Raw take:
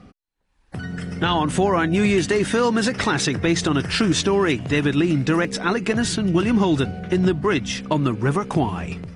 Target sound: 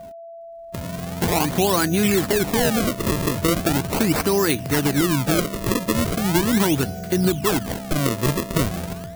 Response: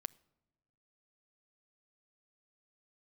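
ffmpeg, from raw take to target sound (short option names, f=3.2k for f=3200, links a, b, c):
-af "acrusher=samples=33:mix=1:aa=0.000001:lfo=1:lforange=52.8:lforate=0.39,crystalizer=i=1:c=0,aeval=exprs='val(0)+0.0178*sin(2*PI*670*n/s)':c=same,volume=-1dB"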